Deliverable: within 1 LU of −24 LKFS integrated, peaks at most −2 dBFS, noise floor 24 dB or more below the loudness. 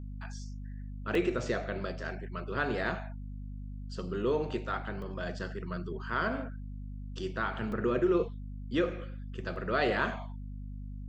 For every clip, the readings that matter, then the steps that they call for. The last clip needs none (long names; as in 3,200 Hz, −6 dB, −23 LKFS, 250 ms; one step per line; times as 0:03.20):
number of dropouts 4; longest dropout 2.3 ms; mains hum 50 Hz; hum harmonics up to 250 Hz; level of the hum −38 dBFS; integrated loudness −34.5 LKFS; sample peak −16.0 dBFS; target loudness −24.0 LKFS
→ repair the gap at 0:01.15/0:05.02/0:07.72/0:09.56, 2.3 ms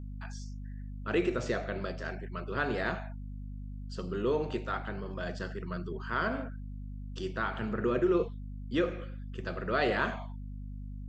number of dropouts 0; mains hum 50 Hz; hum harmonics up to 250 Hz; level of the hum −38 dBFS
→ mains-hum notches 50/100/150/200/250 Hz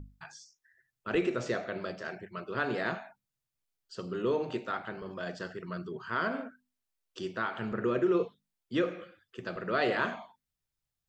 mains hum none found; integrated loudness −33.5 LKFS; sample peak −16.0 dBFS; target loudness −24.0 LKFS
→ level +9.5 dB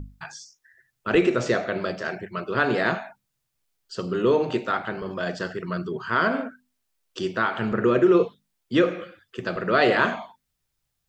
integrated loudness −24.0 LKFS; sample peak −6.5 dBFS; background noise floor −78 dBFS